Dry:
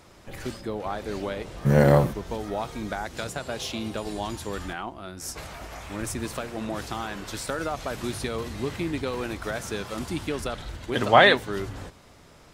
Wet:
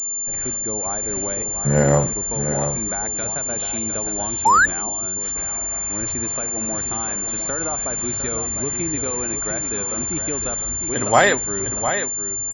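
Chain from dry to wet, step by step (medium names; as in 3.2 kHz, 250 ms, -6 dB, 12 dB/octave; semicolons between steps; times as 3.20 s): delay 705 ms -8.5 dB; painted sound rise, 4.45–4.66 s, 820–1800 Hz -14 dBFS; class-D stage that switches slowly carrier 7.2 kHz; trim +1 dB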